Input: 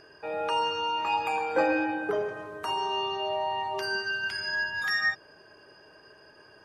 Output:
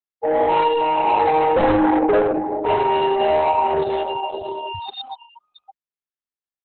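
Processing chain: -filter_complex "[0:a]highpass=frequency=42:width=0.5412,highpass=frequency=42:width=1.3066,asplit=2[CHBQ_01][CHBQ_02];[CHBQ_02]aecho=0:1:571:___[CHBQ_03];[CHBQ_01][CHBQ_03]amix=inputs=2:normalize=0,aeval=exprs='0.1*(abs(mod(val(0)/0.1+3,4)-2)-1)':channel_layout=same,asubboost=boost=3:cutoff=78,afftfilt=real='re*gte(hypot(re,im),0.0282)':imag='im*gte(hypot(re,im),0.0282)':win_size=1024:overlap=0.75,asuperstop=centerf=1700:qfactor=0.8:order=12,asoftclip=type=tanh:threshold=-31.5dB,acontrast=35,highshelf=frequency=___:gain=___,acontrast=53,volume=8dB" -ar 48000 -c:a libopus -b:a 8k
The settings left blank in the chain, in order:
0.422, 2.9k, -7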